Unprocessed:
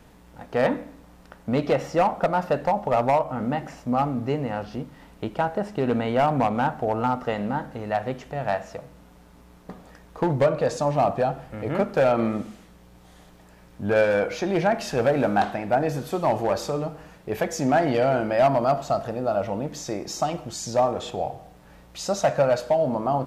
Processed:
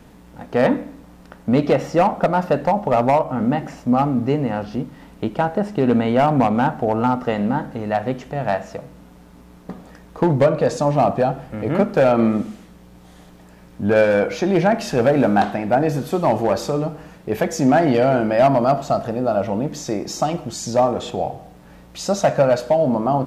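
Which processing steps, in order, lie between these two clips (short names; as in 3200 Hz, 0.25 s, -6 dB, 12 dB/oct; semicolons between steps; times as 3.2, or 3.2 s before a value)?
bell 230 Hz +5 dB 1.5 oct; gain +3.5 dB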